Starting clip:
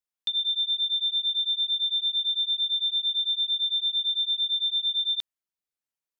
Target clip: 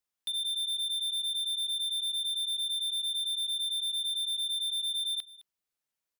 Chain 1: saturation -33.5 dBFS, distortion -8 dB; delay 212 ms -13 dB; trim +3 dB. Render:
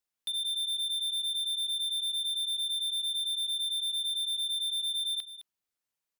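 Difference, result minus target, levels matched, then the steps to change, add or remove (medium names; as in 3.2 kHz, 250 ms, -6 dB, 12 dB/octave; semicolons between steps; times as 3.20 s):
echo-to-direct +6 dB
change: delay 212 ms -19 dB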